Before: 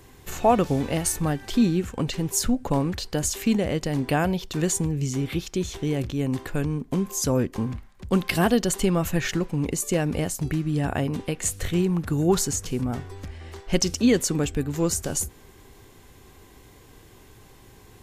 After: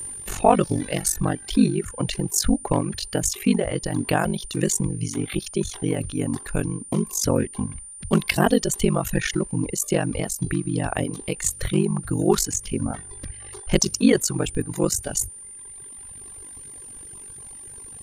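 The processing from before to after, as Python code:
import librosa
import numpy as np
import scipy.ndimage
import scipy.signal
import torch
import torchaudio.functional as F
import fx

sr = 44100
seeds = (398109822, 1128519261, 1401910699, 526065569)

y = x * np.sin(2.0 * np.pi * 24.0 * np.arange(len(x)) / sr)
y = y + 10.0 ** (-36.0 / 20.0) * np.sin(2.0 * np.pi * 9200.0 * np.arange(len(y)) / sr)
y = fx.dereverb_blind(y, sr, rt60_s=1.8)
y = y * 10.0 ** (5.5 / 20.0)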